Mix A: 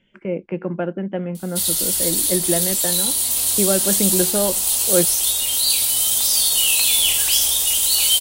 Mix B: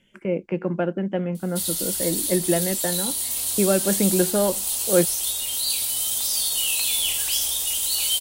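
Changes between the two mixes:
speech: remove LPF 3700 Hz 12 dB/oct; background -6.5 dB

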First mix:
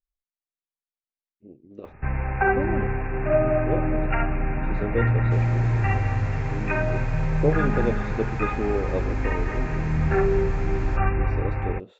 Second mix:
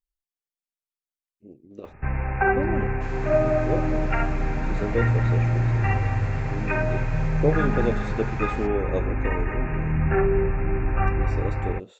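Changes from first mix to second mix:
speech: remove air absorption 170 m; second sound: entry -2.30 s

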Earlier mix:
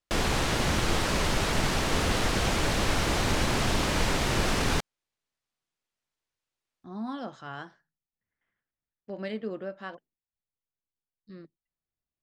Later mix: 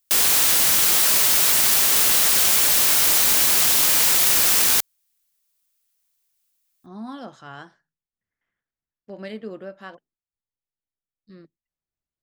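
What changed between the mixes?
background: add tilt +4 dB/oct; master: remove air absorption 59 m

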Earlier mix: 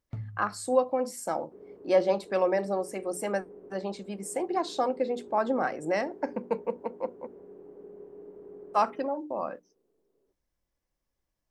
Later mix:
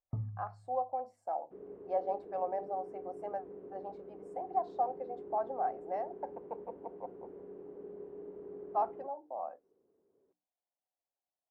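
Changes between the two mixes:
speech: add band-pass 740 Hz, Q 6.3; first sound: add brick-wall FIR low-pass 1300 Hz

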